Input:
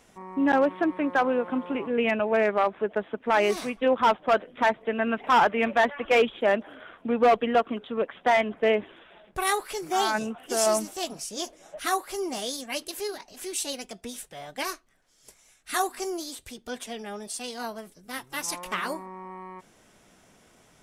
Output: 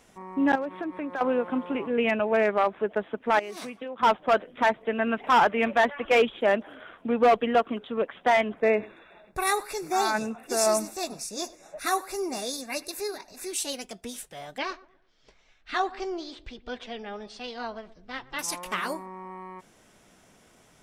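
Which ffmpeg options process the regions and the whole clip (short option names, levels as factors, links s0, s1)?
-filter_complex "[0:a]asettb=1/sr,asplit=3[s0][s1][s2];[s0]atrim=end=0.554[s3];[s1]atrim=start=0.55:end=1.21,asetpts=PTS-STARTPTS,afade=t=in:d=0.004:c=qsin,afade=t=out:st=0.656:d=0.004:c=qsin,bandreject=f=3000:w=15,acompressor=threshold=0.0282:ratio=3:attack=3.2:release=140:knee=1:detection=peak[s4];[s2]atrim=start=1.206[s5];[s3][s4]acrossfade=d=0.004:c1=hsin:c2=qsin[s6];[s6][s5]acrossfade=d=0.004:c1=qsin:c2=hsin,asettb=1/sr,asplit=3[s7][s8][s9];[s7]atrim=end=3.394[s10];[s8]atrim=start=3.39:end=4.03,asetpts=PTS-STARTPTS,afade=t=in:d=0.004:c=qsin,afade=t=out:st=0.636:d=0.004:c=qsin,highpass=110,acompressor=threshold=0.0224:ratio=12:attack=3.2:release=140:knee=1:detection=peak[s11];[s9]atrim=start=4.026[s12];[s10][s11]acrossfade=d=0.004:c1=hsin:c2=qsin[s13];[s13][s12]acrossfade=d=0.004:c1=qsin:c2=hsin,asettb=1/sr,asplit=3[s14][s15][s16];[s14]atrim=end=8.604[s17];[s15]atrim=start=8.6:end=13.51,asetpts=PTS-STARTPTS,afade=t=in:d=0.004:c=qsin,afade=t=out:st=4.906:d=0.004:c=qsin,asuperstop=centerf=3100:order=20:qfactor=5,aecho=1:1:99:0.0841,atrim=end_sample=216531[s18];[s16]atrim=start=13.506[s19];[s17][s18]acrossfade=d=0.004:c1=hsin:c2=qsin[s20];[s20][s19]acrossfade=d=0.004:c1=qsin:c2=hsin,asettb=1/sr,asplit=3[s21][s22][s23];[s21]atrim=end=14.584[s24];[s22]atrim=start=14.58:end=18.39,asetpts=PTS-STARTPTS,afade=t=in:d=0.004:c=qsin,afade=t=out:st=3.806:d=0.004:c=qsin,lowpass=f=4300:w=0.5412,lowpass=f=4300:w=1.3066,asubboost=boost=6.5:cutoff=65,asplit=2[s25][s26];[s26]adelay=119,lowpass=f=960:p=1,volume=0.141,asplit=2[s27][s28];[s28]adelay=119,lowpass=f=960:p=1,volume=0.36,asplit=2[s29][s30];[s30]adelay=119,lowpass=f=960:p=1,volume=0.36[s31];[s25][s27][s29][s31]amix=inputs=4:normalize=0,atrim=end_sample=168021[s32];[s23]atrim=start=18.386[s33];[s24][s32]acrossfade=d=0.004:c1=hsin:c2=qsin[s34];[s34][s33]acrossfade=d=0.004:c1=qsin:c2=hsin"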